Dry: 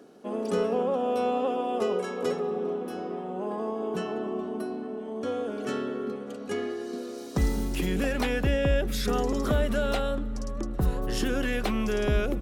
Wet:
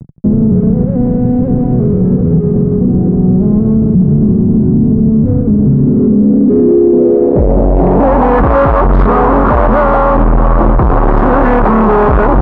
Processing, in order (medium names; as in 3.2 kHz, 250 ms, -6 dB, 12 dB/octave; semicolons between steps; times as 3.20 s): median filter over 15 samples; 3.74–5.86 s: peaking EQ 120 Hz +13 dB 1.1 oct; fuzz box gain 39 dB, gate -46 dBFS; low-pass sweep 150 Hz -> 1.1 kHz, 5.69–8.43 s; loudness maximiser +16.5 dB; trim -1 dB